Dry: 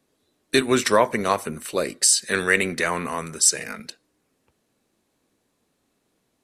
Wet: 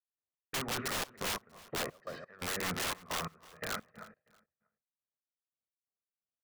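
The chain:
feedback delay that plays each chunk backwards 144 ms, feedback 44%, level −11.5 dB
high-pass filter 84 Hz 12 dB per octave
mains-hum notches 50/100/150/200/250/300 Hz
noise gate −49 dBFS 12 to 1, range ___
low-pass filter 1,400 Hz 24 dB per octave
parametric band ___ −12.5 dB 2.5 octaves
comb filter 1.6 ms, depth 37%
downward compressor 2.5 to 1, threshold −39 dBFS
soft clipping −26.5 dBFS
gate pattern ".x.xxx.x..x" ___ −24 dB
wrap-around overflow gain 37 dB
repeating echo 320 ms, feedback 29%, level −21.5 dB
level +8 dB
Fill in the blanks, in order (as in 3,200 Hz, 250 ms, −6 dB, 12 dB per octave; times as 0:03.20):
−35 dB, 320 Hz, 87 BPM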